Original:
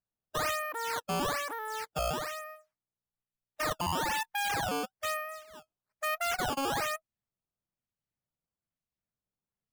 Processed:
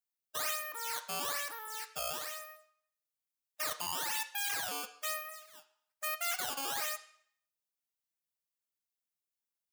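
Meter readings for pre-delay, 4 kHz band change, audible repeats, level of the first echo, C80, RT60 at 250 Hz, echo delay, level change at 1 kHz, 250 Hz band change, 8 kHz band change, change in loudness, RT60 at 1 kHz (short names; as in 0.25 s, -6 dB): 18 ms, -1.5 dB, none, none, 15.5 dB, 0.65 s, none, -8.0 dB, -15.5 dB, +2.0 dB, -3.0 dB, 0.60 s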